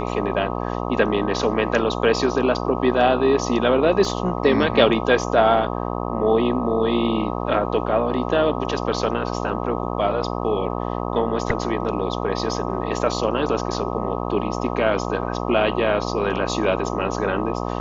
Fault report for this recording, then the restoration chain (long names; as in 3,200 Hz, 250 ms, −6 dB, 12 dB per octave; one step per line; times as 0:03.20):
mains buzz 60 Hz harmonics 21 −26 dBFS
0:04.05: drop-out 2.3 ms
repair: hum removal 60 Hz, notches 21
repair the gap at 0:04.05, 2.3 ms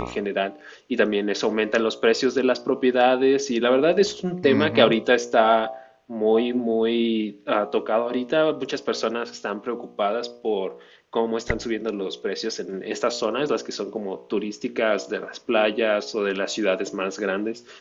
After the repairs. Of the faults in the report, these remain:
none of them is left